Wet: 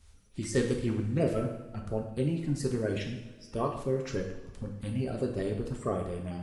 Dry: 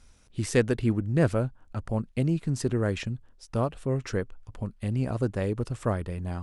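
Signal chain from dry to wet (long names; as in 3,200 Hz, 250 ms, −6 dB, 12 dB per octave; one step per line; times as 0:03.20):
spectral magnitudes quantised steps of 30 dB
coupled-rooms reverb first 0.76 s, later 2.7 s, from −18 dB, DRR 1.5 dB
level −5 dB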